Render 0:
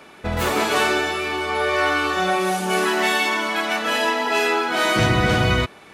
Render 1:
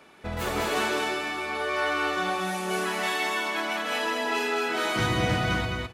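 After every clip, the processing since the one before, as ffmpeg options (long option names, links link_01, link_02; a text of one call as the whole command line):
ffmpeg -i in.wav -af "aecho=1:1:211|422|633:0.668|0.107|0.0171,volume=-8.5dB" out.wav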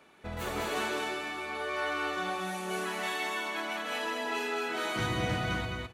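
ffmpeg -i in.wav -af "bandreject=frequency=5100:width=14,volume=-6dB" out.wav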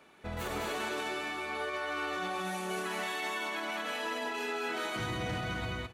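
ffmpeg -i in.wav -af "alimiter=level_in=2.5dB:limit=-24dB:level=0:latency=1:release=41,volume=-2.5dB" out.wav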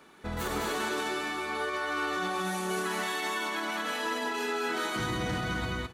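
ffmpeg -i in.wav -af "equalizer=frequency=100:width_type=o:width=0.67:gain=-6,equalizer=frequency=630:width_type=o:width=0.67:gain=-6,equalizer=frequency=2500:width_type=o:width=0.67:gain=-6,volume=6dB" out.wav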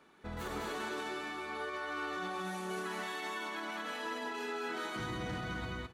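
ffmpeg -i in.wav -af "highshelf=frequency=6100:gain=-7,volume=-7dB" out.wav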